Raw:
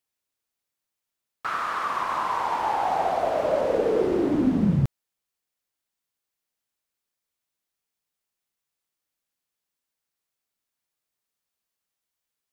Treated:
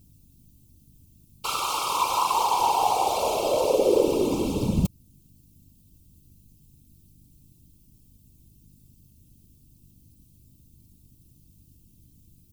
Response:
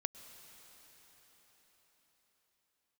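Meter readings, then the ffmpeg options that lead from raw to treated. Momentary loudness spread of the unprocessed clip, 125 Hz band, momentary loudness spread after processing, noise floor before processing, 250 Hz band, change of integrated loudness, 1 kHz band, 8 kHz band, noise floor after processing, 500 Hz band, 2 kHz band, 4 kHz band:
6 LU, -3.0 dB, 6 LU, -85 dBFS, -3.0 dB, +0.5 dB, +2.0 dB, n/a, -58 dBFS, +1.0 dB, -3.5 dB, +11.0 dB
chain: -filter_complex "[0:a]aecho=1:1:2.2:0.72,asplit=2[a][b];[b]alimiter=limit=-18.5dB:level=0:latency=1:release=383,volume=2dB[c];[a][c]amix=inputs=2:normalize=0,asuperstop=centerf=1700:order=12:qfactor=1.5,acrossover=split=570[d][e];[e]crystalizer=i=5.5:c=0[f];[d][f]amix=inputs=2:normalize=0,aeval=exprs='val(0)+0.00398*(sin(2*PI*50*n/s)+sin(2*PI*2*50*n/s)/2+sin(2*PI*3*50*n/s)/3+sin(2*PI*4*50*n/s)/4+sin(2*PI*5*50*n/s)/5)':c=same,afftfilt=real='hypot(re,im)*cos(2*PI*random(0))':imag='hypot(re,im)*sin(2*PI*random(1))':win_size=512:overlap=0.75"

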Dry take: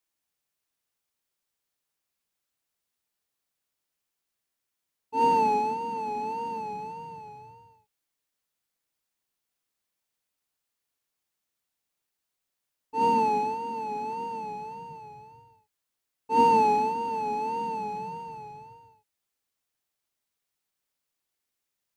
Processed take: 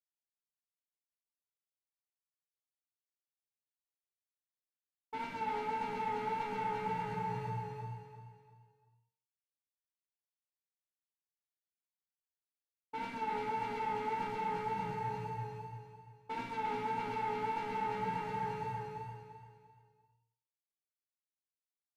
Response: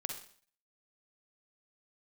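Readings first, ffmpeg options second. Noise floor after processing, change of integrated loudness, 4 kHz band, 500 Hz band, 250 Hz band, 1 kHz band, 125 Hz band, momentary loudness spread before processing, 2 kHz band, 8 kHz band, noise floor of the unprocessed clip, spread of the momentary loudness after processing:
under -85 dBFS, -11.0 dB, -5.5 dB, -9.0 dB, -9.0 dB, -10.0 dB, +3.5 dB, 20 LU, -1.5 dB, n/a, -84 dBFS, 12 LU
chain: -filter_complex "[0:a]agate=range=-33dB:threshold=-47dB:ratio=3:detection=peak,equalizer=f=120:t=o:w=0.24:g=14,bandreject=f=228.2:t=h:w=4,bandreject=f=456.4:t=h:w=4,bandreject=f=684.6:t=h:w=4,bandreject=f=912.8:t=h:w=4,bandreject=f=1.141k:t=h:w=4,bandreject=f=1.3692k:t=h:w=4,bandreject=f=1.5974k:t=h:w=4,bandreject=f=1.8256k:t=h:w=4,bandreject=f=2.0538k:t=h:w=4,bandreject=f=2.282k:t=h:w=4,bandreject=f=2.5102k:t=h:w=4,bandreject=f=2.7384k:t=h:w=4,bandreject=f=2.9666k:t=h:w=4,bandreject=f=3.1948k:t=h:w=4,bandreject=f=3.423k:t=h:w=4,bandreject=f=3.6512k:t=h:w=4,bandreject=f=3.8794k:t=h:w=4,bandreject=f=4.1076k:t=h:w=4,bandreject=f=4.3358k:t=h:w=4,bandreject=f=4.564k:t=h:w=4,bandreject=f=4.7922k:t=h:w=4,bandreject=f=5.0204k:t=h:w=4,bandreject=f=5.2486k:t=h:w=4,bandreject=f=5.4768k:t=h:w=4,bandreject=f=5.705k:t=h:w=4,bandreject=f=5.9332k:t=h:w=4,bandreject=f=6.1614k:t=h:w=4,bandreject=f=6.3896k:t=h:w=4,bandreject=f=6.6178k:t=h:w=4,acompressor=threshold=-34dB:ratio=12,asoftclip=type=tanh:threshold=-40dB,asplit=2[a][b];[b]adelay=16,volume=-6dB[c];[a][c]amix=inputs=2:normalize=0,aecho=1:1:344|688|1032|1376:0.708|0.241|0.0818|0.0278[d];[1:a]atrim=start_sample=2205,asetrate=52920,aresample=44100[e];[d][e]afir=irnorm=-1:irlink=0,aresample=32000,aresample=44100,volume=6dB"

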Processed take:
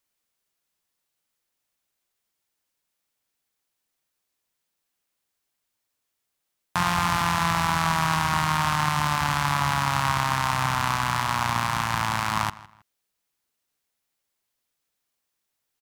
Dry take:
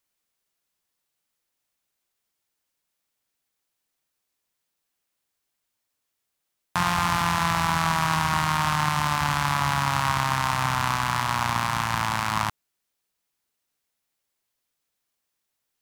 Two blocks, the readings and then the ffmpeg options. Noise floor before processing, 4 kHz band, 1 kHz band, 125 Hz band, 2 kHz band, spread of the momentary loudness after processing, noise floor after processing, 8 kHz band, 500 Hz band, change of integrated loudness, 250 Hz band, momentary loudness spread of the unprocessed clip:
-81 dBFS, 0.0 dB, 0.0 dB, 0.0 dB, 0.0 dB, 2 LU, -80 dBFS, 0.0 dB, 0.0 dB, 0.0 dB, 0.0 dB, 2 LU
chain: -filter_complex "[0:a]asplit=2[a][b];[b]adelay=160,lowpass=f=4.4k:p=1,volume=-19dB,asplit=2[c][d];[d]adelay=160,lowpass=f=4.4k:p=1,volume=0.28[e];[a][c][e]amix=inputs=3:normalize=0"

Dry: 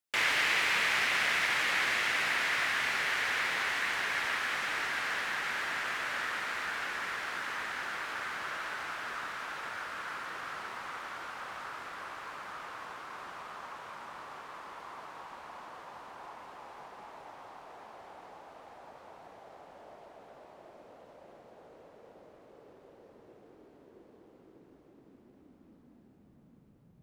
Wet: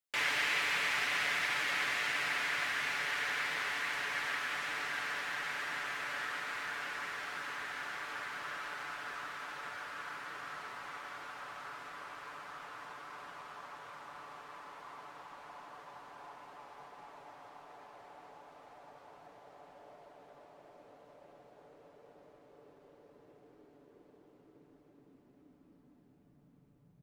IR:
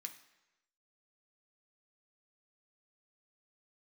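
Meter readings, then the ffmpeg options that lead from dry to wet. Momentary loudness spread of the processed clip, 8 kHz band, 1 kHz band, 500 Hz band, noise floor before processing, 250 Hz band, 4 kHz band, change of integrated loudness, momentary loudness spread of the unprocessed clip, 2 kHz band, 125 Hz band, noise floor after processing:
22 LU, -4.0 dB, -4.0 dB, -4.5 dB, -60 dBFS, -4.0 dB, -4.0 dB, -4.0 dB, 22 LU, -4.0 dB, -3.0 dB, -64 dBFS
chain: -af "aecho=1:1:6.9:0.48,volume=-5dB"

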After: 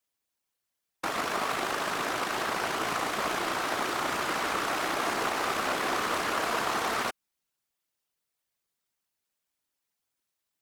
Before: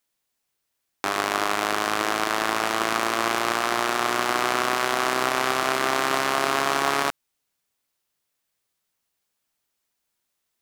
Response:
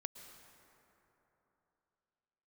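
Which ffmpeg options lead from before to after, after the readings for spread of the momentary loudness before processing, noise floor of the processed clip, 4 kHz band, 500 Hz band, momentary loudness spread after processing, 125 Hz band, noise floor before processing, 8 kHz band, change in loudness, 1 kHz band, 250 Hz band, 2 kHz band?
2 LU, -84 dBFS, -6.0 dB, -6.0 dB, 2 LU, -4.5 dB, -79 dBFS, -6.0 dB, -6.0 dB, -6.0 dB, -6.0 dB, -6.0 dB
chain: -af "afftfilt=real='hypot(re,im)*cos(2*PI*random(0))':imag='hypot(re,im)*sin(2*PI*random(1))':win_size=512:overlap=0.75"

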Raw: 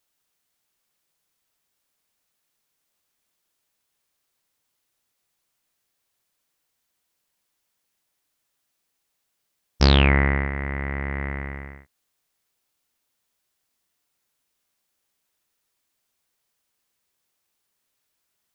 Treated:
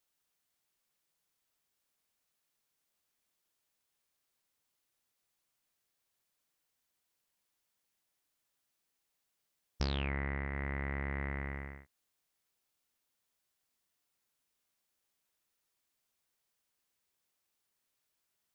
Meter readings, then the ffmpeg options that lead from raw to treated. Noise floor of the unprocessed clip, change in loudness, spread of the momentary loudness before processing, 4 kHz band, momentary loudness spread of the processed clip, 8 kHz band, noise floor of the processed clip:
-77 dBFS, -16.0 dB, 16 LU, -19.0 dB, 9 LU, n/a, -83 dBFS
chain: -af "acompressor=threshold=-26dB:ratio=6,volume=-6.5dB"

